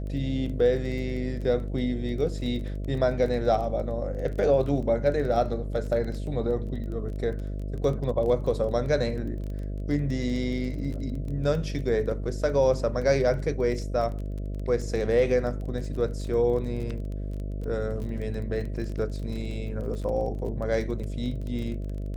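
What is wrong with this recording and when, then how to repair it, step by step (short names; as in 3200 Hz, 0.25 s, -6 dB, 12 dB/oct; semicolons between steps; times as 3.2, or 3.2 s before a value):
buzz 50 Hz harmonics 13 -32 dBFS
crackle 21/s -34 dBFS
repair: de-click; de-hum 50 Hz, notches 13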